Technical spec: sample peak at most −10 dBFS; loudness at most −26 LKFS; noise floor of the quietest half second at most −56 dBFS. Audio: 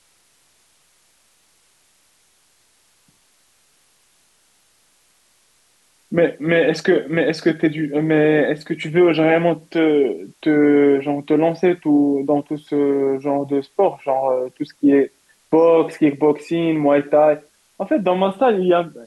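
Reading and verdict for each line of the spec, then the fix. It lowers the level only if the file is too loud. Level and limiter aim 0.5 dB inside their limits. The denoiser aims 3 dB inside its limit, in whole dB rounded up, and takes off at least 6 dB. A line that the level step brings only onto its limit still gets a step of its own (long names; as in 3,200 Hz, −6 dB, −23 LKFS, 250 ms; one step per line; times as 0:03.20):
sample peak −5.5 dBFS: out of spec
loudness −17.5 LKFS: out of spec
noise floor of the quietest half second −59 dBFS: in spec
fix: level −9 dB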